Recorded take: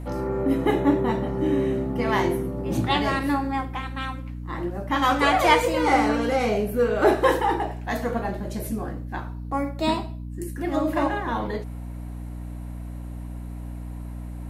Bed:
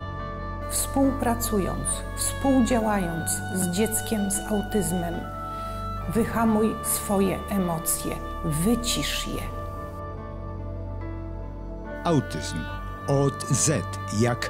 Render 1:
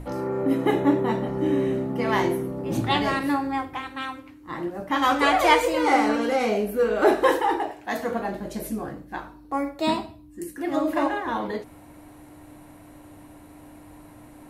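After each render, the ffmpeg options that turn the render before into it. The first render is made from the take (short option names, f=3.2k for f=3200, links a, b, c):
-af "bandreject=f=60:t=h:w=6,bandreject=f=120:t=h:w=6,bandreject=f=180:t=h:w=6,bandreject=f=240:t=h:w=6"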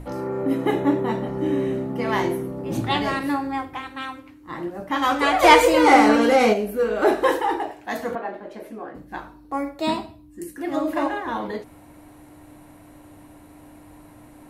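-filter_complex "[0:a]asplit=3[a][b][c];[a]afade=t=out:st=5.42:d=0.02[d];[b]acontrast=87,afade=t=in:st=5.42:d=0.02,afade=t=out:st=6.52:d=0.02[e];[c]afade=t=in:st=6.52:d=0.02[f];[d][e][f]amix=inputs=3:normalize=0,asettb=1/sr,asplit=3[g][h][i];[g]atrim=end=8.154[j];[h]atrim=start=8.15:end=8.95,asetpts=PTS-STARTPTS,afade=t=in:d=0.004:c=qsin,afade=t=out:st=0.796:d=0.004:c=qsin,acrossover=split=280 3100:gain=0.0891 1 0.112[k][l][m];[k][l][m]amix=inputs=3:normalize=0[n];[i]atrim=start=8.946[o];[j][n]acrossfade=d=0.004:c1=hsin:c2=qsin[p];[p][o]acrossfade=d=0.004:c1=qsin:c2=hsin"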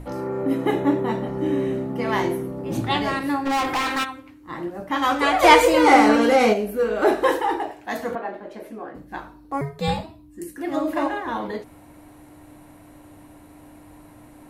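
-filter_complex "[0:a]asplit=3[a][b][c];[a]afade=t=out:st=3.45:d=0.02[d];[b]asplit=2[e][f];[f]highpass=f=720:p=1,volume=30dB,asoftclip=type=tanh:threshold=-16dB[g];[e][g]amix=inputs=2:normalize=0,lowpass=f=7.4k:p=1,volume=-6dB,afade=t=in:st=3.45:d=0.02,afade=t=out:st=4.03:d=0.02[h];[c]afade=t=in:st=4.03:d=0.02[i];[d][h][i]amix=inputs=3:normalize=0,asettb=1/sr,asplit=3[j][k][l];[j]atrim=end=9.614[m];[k]atrim=start=9.61:end=10.03,asetpts=PTS-STARTPTS,afade=t=in:d=0.004:c=qsin,afade=t=out:st=0.416:d=0.004:c=qsin,afreqshift=-140[n];[l]atrim=start=10.026[o];[m][n]acrossfade=d=0.004:c1=hsin:c2=qsin[p];[p][o]acrossfade=d=0.004:c1=qsin:c2=hsin"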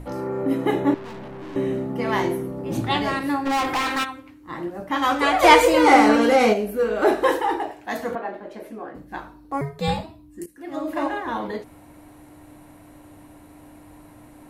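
-filter_complex "[0:a]asettb=1/sr,asplit=3[a][b][c];[a]atrim=end=0.944[d];[b]atrim=start=0.94:end=1.56,asetpts=PTS-STARTPTS,afade=t=in:d=0.004:c=qsin,afade=t=out:st=0.616:d=0.004:c=qsin,aeval=exprs='(tanh(56.2*val(0)+0.4)-tanh(0.4))/56.2':c=same[e];[c]atrim=start=1.556[f];[d][e]acrossfade=d=0.004:c1=hsin:c2=qsin[g];[g][f]acrossfade=d=0.004:c1=qsin:c2=hsin,asplit=2[h][i];[h]atrim=end=10.46,asetpts=PTS-STARTPTS,afade=t=out:st=10.456:d=0.004:c=hsin:silence=0.177828[j];[i]atrim=start=10.46,asetpts=PTS-STARTPTS,afade=t=in:d=0.7:silence=0.177828[k];[j][k]concat=n=2:v=0:a=1"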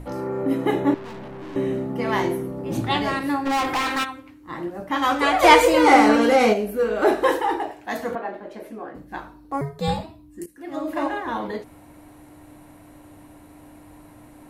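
-filter_complex "[0:a]asettb=1/sr,asplit=3[a][b][c];[a]atrim=end=9.564[d];[b]atrim=start=9.56:end=10.01,asetpts=PTS-STARTPTS,afade=t=in:d=0.004:c=qsin,afade=t=out:st=0.446:d=0.004:c=qsin,equalizer=f=2.4k:t=o:w=0.71:g=-6[e];[c]atrim=start=10.006[f];[d][e]acrossfade=d=0.004:c1=hsin:c2=qsin[g];[g][f]acrossfade=d=0.004:c1=qsin:c2=hsin"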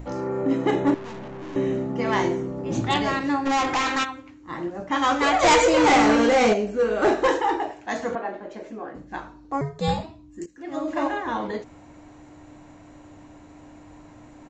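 -af "aresample=16000,volume=13.5dB,asoftclip=hard,volume=-13.5dB,aresample=44100,aexciter=amount=2.3:drive=0.9:freq=6.3k"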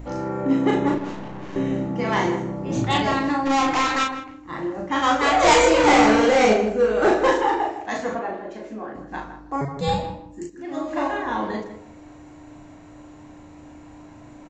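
-filter_complex "[0:a]asplit=2[a][b];[b]adelay=37,volume=-3.5dB[c];[a][c]amix=inputs=2:normalize=0,asplit=2[d][e];[e]adelay=159,lowpass=f=1.7k:p=1,volume=-9.5dB,asplit=2[f][g];[g]adelay=159,lowpass=f=1.7k:p=1,volume=0.22,asplit=2[h][i];[i]adelay=159,lowpass=f=1.7k:p=1,volume=0.22[j];[d][f][h][j]amix=inputs=4:normalize=0"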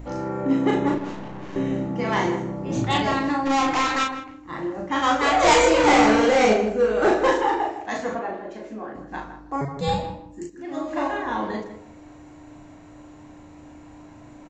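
-af "volume=-1dB"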